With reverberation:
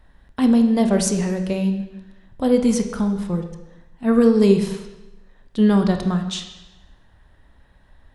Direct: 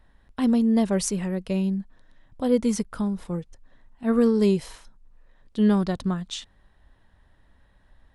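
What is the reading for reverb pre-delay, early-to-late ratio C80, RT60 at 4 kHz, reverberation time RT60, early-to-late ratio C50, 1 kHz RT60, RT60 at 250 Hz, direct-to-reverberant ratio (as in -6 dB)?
25 ms, 10.0 dB, 0.95 s, 1.0 s, 8.0 dB, 1.0 s, 1.0 s, 5.5 dB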